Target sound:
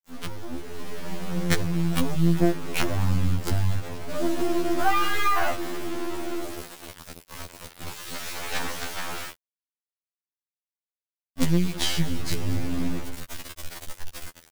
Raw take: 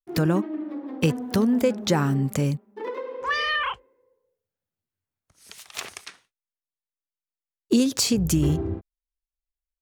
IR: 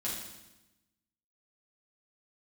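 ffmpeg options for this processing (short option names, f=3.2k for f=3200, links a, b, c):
-filter_complex "[0:a]aeval=exprs='val(0)+0.5*0.0211*sgn(val(0))':c=same,highshelf=f=4.4k:g=-10,acompressor=threshold=-24dB:ratio=20,asplit=2[a][b];[b]aecho=0:1:160|320:0.0841|0.0252[c];[a][c]amix=inputs=2:normalize=0,asetrate=29812,aresample=44100,acrusher=bits=4:dc=4:mix=0:aa=0.000001,dynaudnorm=f=130:g=13:m=10.5dB,afftfilt=real='re*2*eq(mod(b,4),0)':imag='im*2*eq(mod(b,4),0)':win_size=2048:overlap=0.75"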